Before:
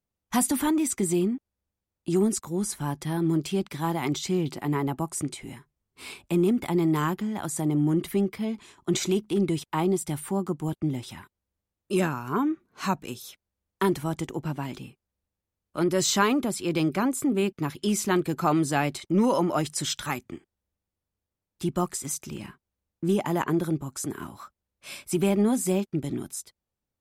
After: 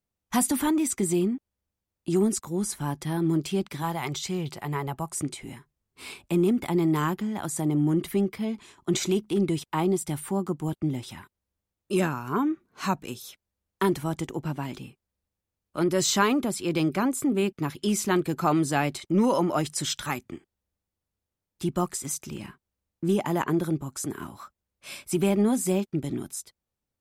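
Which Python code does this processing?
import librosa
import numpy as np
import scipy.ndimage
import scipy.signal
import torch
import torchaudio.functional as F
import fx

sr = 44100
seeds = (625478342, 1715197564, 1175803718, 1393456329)

y = fx.peak_eq(x, sr, hz=280.0, db=-12.0, octaves=0.71, at=(3.82, 5.13))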